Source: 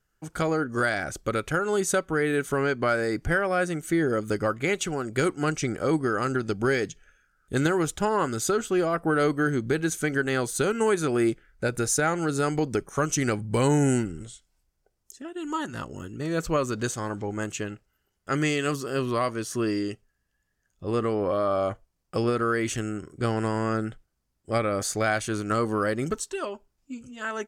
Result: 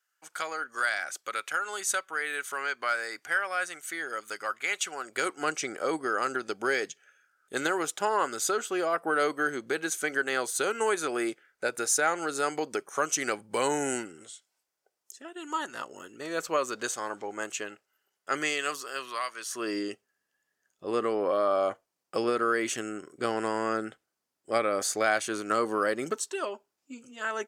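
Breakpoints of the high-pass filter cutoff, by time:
0:04.69 1,100 Hz
0:05.47 510 Hz
0:18.36 510 Hz
0:19.32 1,400 Hz
0:19.77 350 Hz

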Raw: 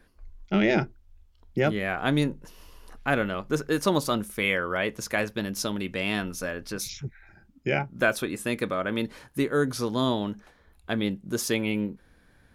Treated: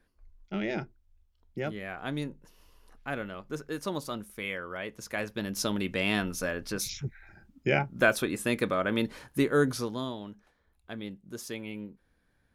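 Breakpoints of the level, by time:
0:04.91 −10 dB
0:05.71 0 dB
0:09.68 0 dB
0:10.12 −12 dB

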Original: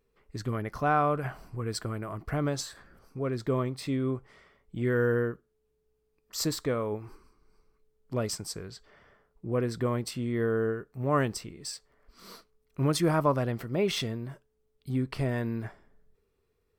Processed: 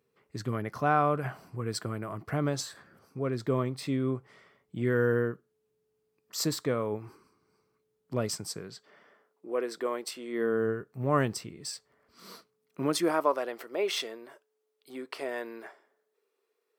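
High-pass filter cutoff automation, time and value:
high-pass filter 24 dB per octave
0:08.44 100 Hz
0:09.53 340 Hz
0:10.27 340 Hz
0:10.74 90 Hz
0:12.31 90 Hz
0:13.32 370 Hz

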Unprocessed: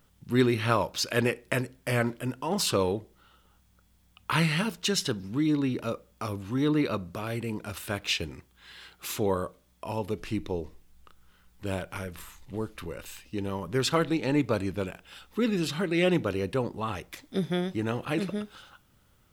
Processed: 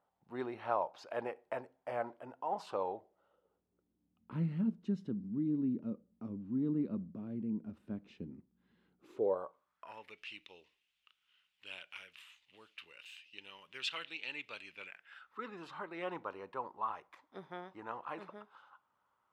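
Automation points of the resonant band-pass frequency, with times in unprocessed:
resonant band-pass, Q 3.8
0:02.98 770 Hz
0:04.31 220 Hz
0:08.94 220 Hz
0:09.39 740 Hz
0:10.26 2,800 Hz
0:14.66 2,800 Hz
0:15.56 1,000 Hz

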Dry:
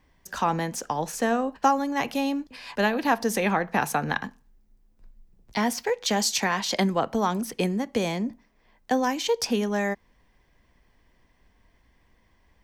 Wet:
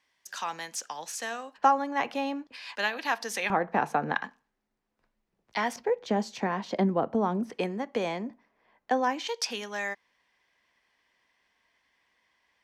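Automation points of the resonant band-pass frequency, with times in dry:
resonant band-pass, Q 0.54
4,700 Hz
from 0:01.58 1,100 Hz
from 0:02.52 3,100 Hz
from 0:03.50 580 Hz
from 0:04.15 1,500 Hz
from 0:05.76 340 Hz
from 0:07.50 980 Hz
from 0:09.27 3,000 Hz

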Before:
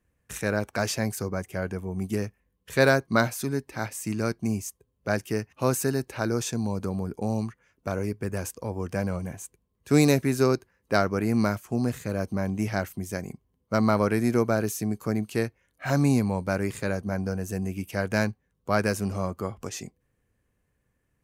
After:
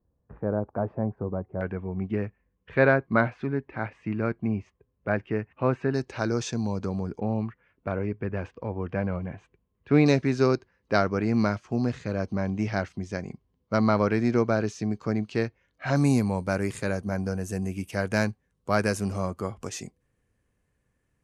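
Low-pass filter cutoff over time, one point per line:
low-pass filter 24 dB per octave
1,000 Hz
from 0:01.61 2,600 Hz
from 0:05.94 6,200 Hz
from 0:07.20 3,000 Hz
from 0:10.06 5,400 Hz
from 0:15.96 11,000 Hz

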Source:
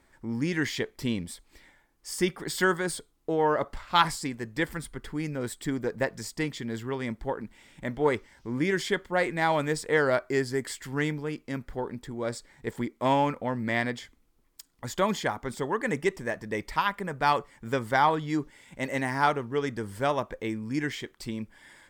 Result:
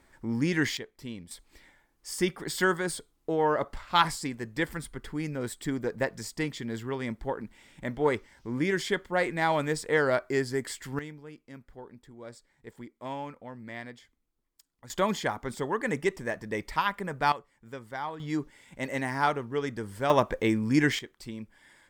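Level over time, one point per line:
+1.5 dB
from 0:00.77 −10.5 dB
from 0:01.31 −1 dB
from 0:10.99 −13 dB
from 0:14.90 −1 dB
from 0:17.32 −13 dB
from 0:18.20 −2 dB
from 0:20.10 +6.5 dB
from 0:20.99 −5 dB

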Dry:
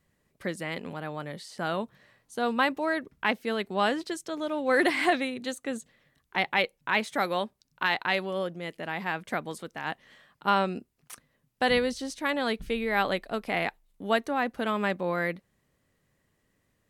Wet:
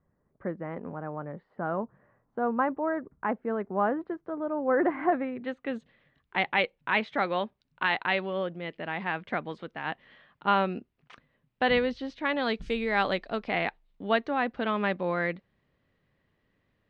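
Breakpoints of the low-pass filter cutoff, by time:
low-pass filter 24 dB per octave
0:05.12 1,400 Hz
0:05.75 3,500 Hz
0:12.29 3,500 Hz
0:12.69 7,200 Hz
0:13.64 4,000 Hz

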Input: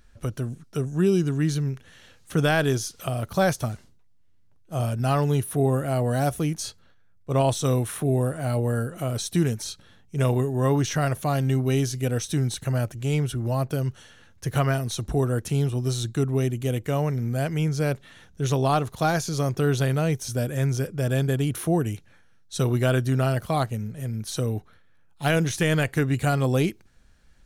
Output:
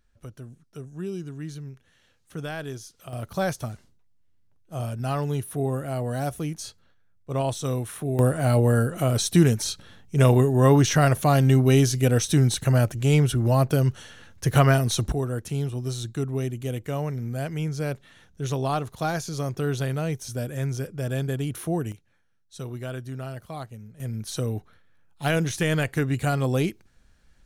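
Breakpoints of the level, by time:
−12 dB
from 0:03.13 −4.5 dB
from 0:08.19 +5 dB
from 0:15.12 −4 dB
from 0:21.92 −12 dB
from 0:24.00 −1.5 dB

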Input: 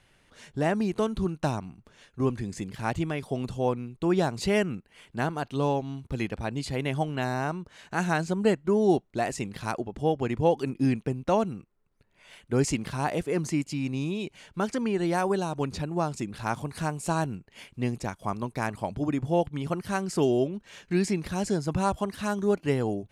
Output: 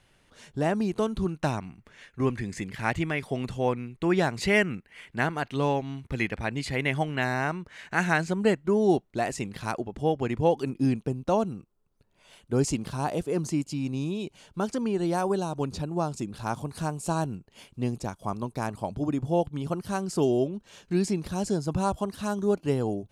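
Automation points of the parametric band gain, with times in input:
parametric band 2,000 Hz 0.81 octaves
0:01.08 −2.5 dB
0:01.66 +9.5 dB
0:08.06 +9.5 dB
0:08.69 +0.5 dB
0:10.43 +0.5 dB
0:11.07 −8.5 dB

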